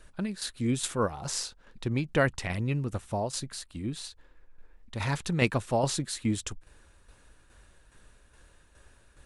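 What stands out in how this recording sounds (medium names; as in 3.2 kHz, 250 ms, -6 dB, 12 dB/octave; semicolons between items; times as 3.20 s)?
tremolo saw down 2.4 Hz, depth 55%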